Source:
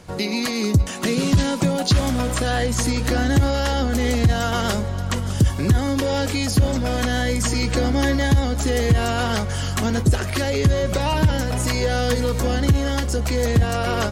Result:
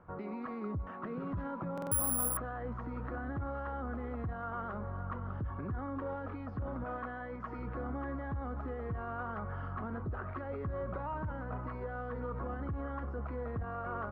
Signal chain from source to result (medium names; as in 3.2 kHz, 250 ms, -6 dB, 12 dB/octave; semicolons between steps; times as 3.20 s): 6.84–7.59 s: bass shelf 230 Hz -9.5 dB; peak limiter -16 dBFS, peak gain reduction 8.5 dB; four-pole ladder low-pass 1.4 kHz, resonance 60%; 1.80–2.37 s: careless resampling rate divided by 4×, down none, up zero stuff; buffer glitch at 1.73 s, samples 2048, times 3; trim -4.5 dB